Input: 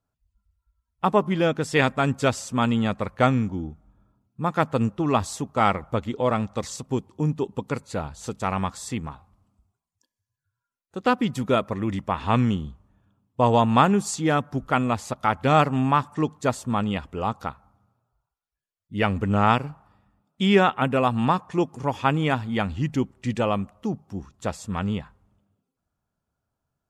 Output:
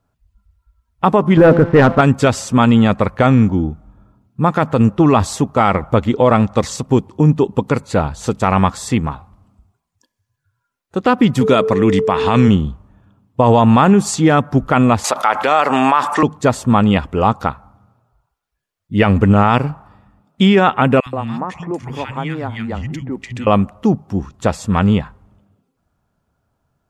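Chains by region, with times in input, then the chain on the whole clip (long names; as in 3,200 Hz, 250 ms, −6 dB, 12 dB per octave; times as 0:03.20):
0:01.37–0:02.01: low-pass filter 1,600 Hz 24 dB per octave + hum removal 170.2 Hz, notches 9 + leveller curve on the samples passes 2
0:11.40–0:12.47: high-pass filter 110 Hz + parametric band 5,900 Hz +7.5 dB 2.2 octaves + steady tone 440 Hz −28 dBFS
0:15.04–0:16.23: high-pass filter 590 Hz + envelope flattener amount 50%
0:21.00–0:23.47: parametric band 2,000 Hz +6 dB 0.36 octaves + downward compressor 2.5 to 1, threshold −37 dBFS + three-band delay without the direct sound highs, lows, mids 60/130 ms, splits 180/1,500 Hz
whole clip: high-shelf EQ 3,600 Hz −7 dB; boost into a limiter +14.5 dB; level −1 dB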